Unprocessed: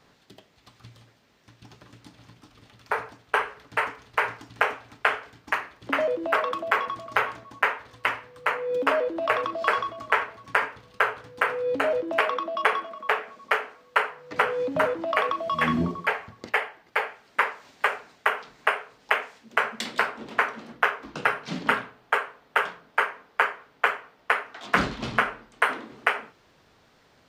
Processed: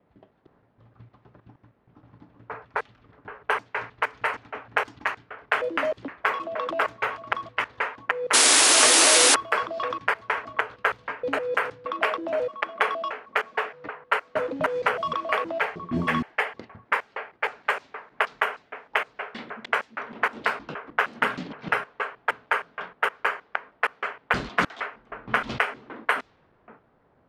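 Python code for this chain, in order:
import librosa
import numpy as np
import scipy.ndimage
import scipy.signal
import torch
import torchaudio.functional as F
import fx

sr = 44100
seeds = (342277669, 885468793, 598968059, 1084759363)

y = fx.block_reorder(x, sr, ms=156.0, group=4)
y = fx.spec_paint(y, sr, seeds[0], shape='noise', start_s=8.33, length_s=1.02, low_hz=240.0, high_hz=11000.0, level_db=-16.0)
y = fx.env_lowpass(y, sr, base_hz=1100.0, full_db=-20.5)
y = y * 10.0 ** (-1.0 / 20.0)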